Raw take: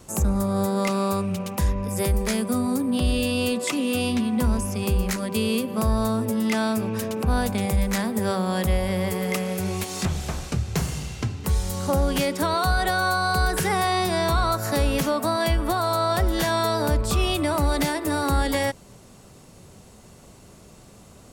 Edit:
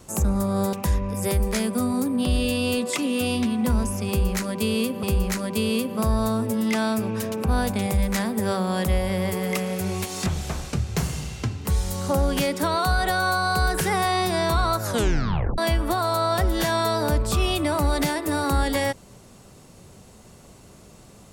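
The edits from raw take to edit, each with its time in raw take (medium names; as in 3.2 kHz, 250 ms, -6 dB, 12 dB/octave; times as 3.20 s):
0.73–1.47 s: delete
4.82–5.77 s: loop, 2 plays
14.61 s: tape stop 0.76 s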